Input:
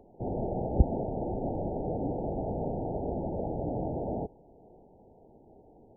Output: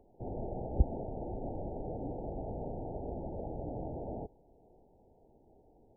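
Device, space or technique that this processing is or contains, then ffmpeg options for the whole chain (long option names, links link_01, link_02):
low shelf boost with a cut just above: -af "lowshelf=frequency=60:gain=7.5,equalizer=frequency=180:width_type=o:width=0.77:gain=-2.5,volume=-7.5dB"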